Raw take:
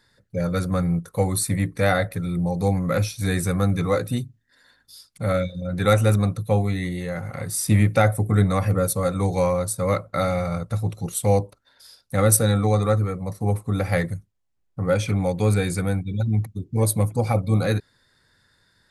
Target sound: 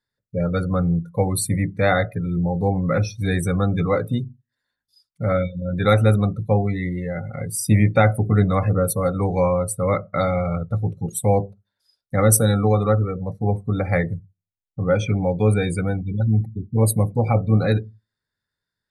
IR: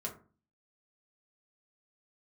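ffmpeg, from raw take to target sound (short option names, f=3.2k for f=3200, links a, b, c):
-filter_complex "[0:a]asplit=2[a][b];[1:a]atrim=start_sample=2205,lowpass=6.3k[c];[b][c]afir=irnorm=-1:irlink=0,volume=-13dB[d];[a][d]amix=inputs=2:normalize=0,afftdn=nr=24:nf=-32,volume=1dB"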